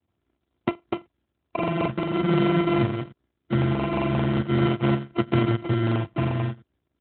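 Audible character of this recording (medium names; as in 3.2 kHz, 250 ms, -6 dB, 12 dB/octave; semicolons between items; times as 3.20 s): a buzz of ramps at a fixed pitch in blocks of 128 samples; phasing stages 4, 0.44 Hz, lowest notch 490–1600 Hz; aliases and images of a low sample rate 1.7 kHz, jitter 0%; AMR-NB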